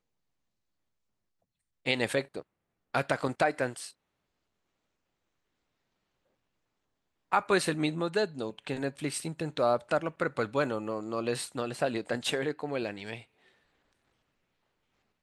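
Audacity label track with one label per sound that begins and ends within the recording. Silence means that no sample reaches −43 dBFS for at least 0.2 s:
1.860000	2.410000	sound
2.940000	3.900000	sound
7.320000	13.220000	sound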